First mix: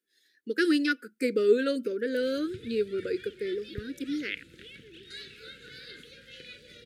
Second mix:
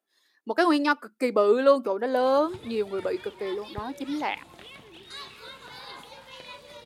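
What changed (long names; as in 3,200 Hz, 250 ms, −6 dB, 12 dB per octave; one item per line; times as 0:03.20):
background: add high-shelf EQ 8,000 Hz +10.5 dB
master: remove elliptic band-stop filter 480–1,500 Hz, stop band 40 dB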